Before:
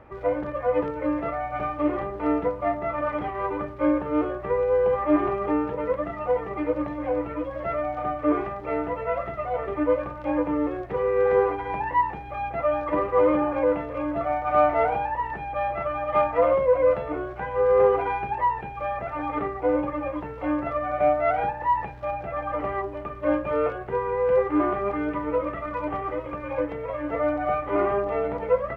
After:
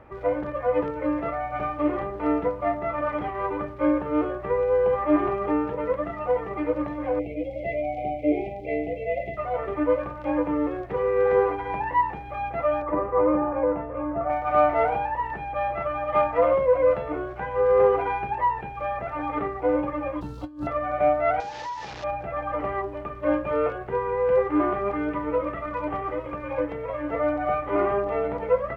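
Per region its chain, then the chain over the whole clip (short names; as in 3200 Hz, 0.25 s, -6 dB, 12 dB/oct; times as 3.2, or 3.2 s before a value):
7.19–9.37 brick-wall FIR band-stop 820–2000 Hz + dynamic EQ 1700 Hz, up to +8 dB, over -52 dBFS, Q 1.9
12.82–14.3 LPF 1400 Hz + doubler 19 ms -12 dB
20.21–20.67 EQ curve 310 Hz 0 dB, 450 Hz -13 dB, 1400 Hz -9 dB, 2100 Hz -21 dB, 4100 Hz +11 dB + negative-ratio compressor -32 dBFS, ratio -0.5 + decimation joined by straight lines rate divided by 2×
21.4–22.04 delta modulation 32 kbps, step -29.5 dBFS + low shelf 140 Hz -9.5 dB + compressor 5:1, threshold -31 dBFS
whole clip: dry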